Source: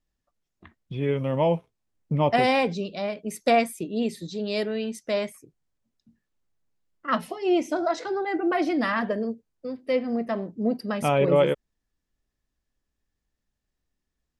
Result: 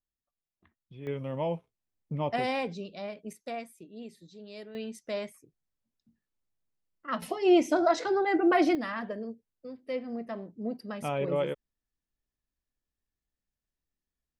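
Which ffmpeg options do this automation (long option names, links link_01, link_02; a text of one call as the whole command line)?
ffmpeg -i in.wav -af "asetnsamples=nb_out_samples=441:pad=0,asendcmd='1.07 volume volume -9dB;3.33 volume volume -17.5dB;4.75 volume volume -8dB;7.22 volume volume 1dB;8.75 volume volume -9.5dB',volume=-16dB" out.wav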